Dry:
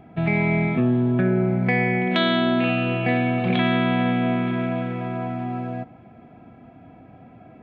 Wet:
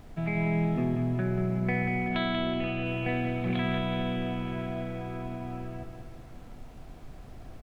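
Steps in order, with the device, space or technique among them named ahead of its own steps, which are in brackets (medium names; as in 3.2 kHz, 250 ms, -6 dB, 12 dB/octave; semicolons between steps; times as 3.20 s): high-pass 230 Hz 6 dB/octave; car interior (peaking EQ 140 Hz +9 dB 0.55 oct; treble shelf 3.9 kHz -5.5 dB; brown noise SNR 12 dB); 2.08–2.86 s: distance through air 60 m; feedback delay 188 ms, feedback 51%, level -7 dB; trim -8.5 dB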